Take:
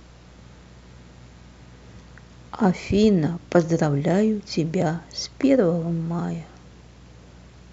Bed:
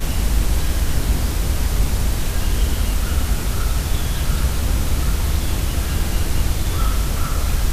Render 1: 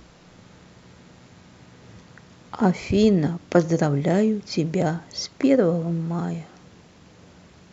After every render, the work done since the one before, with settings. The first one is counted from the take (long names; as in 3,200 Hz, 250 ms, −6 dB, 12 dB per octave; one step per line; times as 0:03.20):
hum removal 60 Hz, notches 2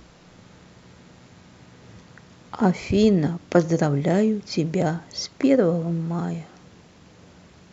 no processing that can be heard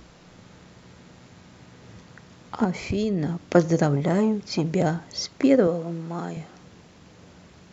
0:02.64–0:03.46: downward compressor, threshold −21 dBFS
0:03.96–0:04.65: saturating transformer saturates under 380 Hz
0:05.67–0:06.37: Bessel high-pass filter 280 Hz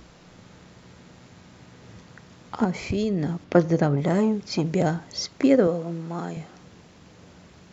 0:03.44–0:03.98: high-frequency loss of the air 130 metres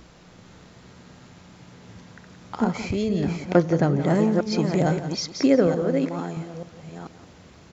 delay that plays each chunk backwards 442 ms, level −6 dB
single-tap delay 173 ms −12.5 dB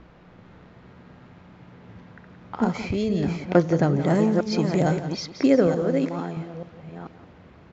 low-pass that shuts in the quiet parts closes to 2,100 Hz, open at −16 dBFS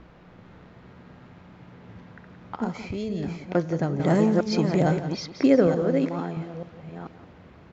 0:02.56–0:04.00: tuned comb filter 160 Hz, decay 1.6 s, mix 50%
0:04.60–0:06.42: high-frequency loss of the air 55 metres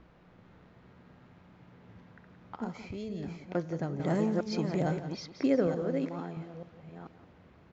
level −8.5 dB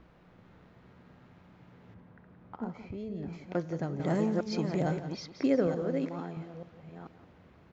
0:01.94–0:03.33: low-pass filter 1,300 Hz 6 dB per octave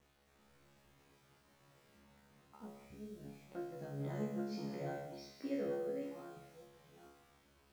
bit reduction 9 bits
tuned comb filter 70 Hz, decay 0.77 s, harmonics all, mix 100%